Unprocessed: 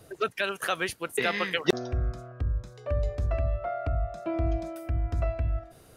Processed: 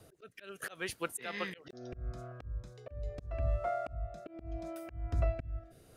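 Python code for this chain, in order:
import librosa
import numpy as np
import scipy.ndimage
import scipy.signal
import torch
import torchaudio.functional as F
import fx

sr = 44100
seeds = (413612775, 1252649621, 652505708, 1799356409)

y = fx.median_filter(x, sr, points=9, at=(3.42, 3.93))
y = fx.auto_swell(y, sr, attack_ms=304.0)
y = fx.rotary(y, sr, hz=0.75)
y = y * librosa.db_to_amplitude(-2.0)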